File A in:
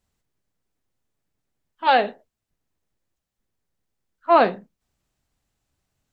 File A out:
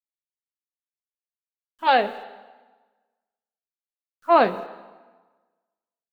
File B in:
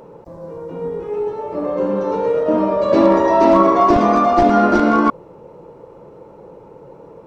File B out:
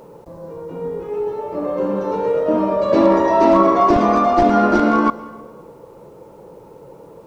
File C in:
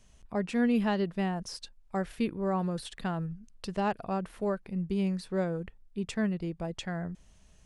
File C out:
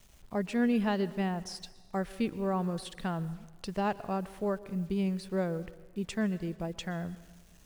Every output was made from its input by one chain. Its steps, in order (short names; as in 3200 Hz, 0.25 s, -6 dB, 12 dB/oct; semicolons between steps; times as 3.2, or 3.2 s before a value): bit-crush 10-bit; plate-style reverb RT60 1.3 s, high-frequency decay 0.85×, pre-delay 0.105 s, DRR 17 dB; gain -1 dB